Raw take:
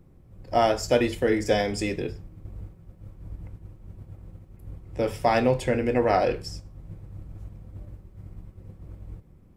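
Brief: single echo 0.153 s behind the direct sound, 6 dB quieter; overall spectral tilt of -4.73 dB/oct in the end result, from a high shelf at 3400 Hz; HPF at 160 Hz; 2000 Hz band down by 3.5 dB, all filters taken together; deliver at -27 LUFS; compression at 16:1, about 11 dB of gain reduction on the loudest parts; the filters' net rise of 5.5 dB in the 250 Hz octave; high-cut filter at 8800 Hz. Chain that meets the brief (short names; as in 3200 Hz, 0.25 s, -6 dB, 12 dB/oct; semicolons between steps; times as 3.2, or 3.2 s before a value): HPF 160 Hz; LPF 8800 Hz; bell 250 Hz +7.5 dB; bell 2000 Hz -6.5 dB; high shelf 3400 Hz +7 dB; compressor 16:1, threshold -25 dBFS; echo 0.153 s -6 dB; gain +4 dB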